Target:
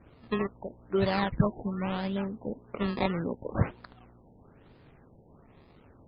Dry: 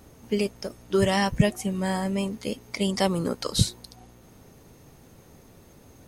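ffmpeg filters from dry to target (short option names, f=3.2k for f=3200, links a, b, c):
-af "acrusher=samples=20:mix=1:aa=0.000001:lfo=1:lforange=20:lforate=0.76,afftfilt=real='re*lt(b*sr/1024,930*pow(5200/930,0.5+0.5*sin(2*PI*1.1*pts/sr)))':imag='im*lt(b*sr/1024,930*pow(5200/930,0.5+0.5*sin(2*PI*1.1*pts/sr)))':win_size=1024:overlap=0.75,volume=-4.5dB"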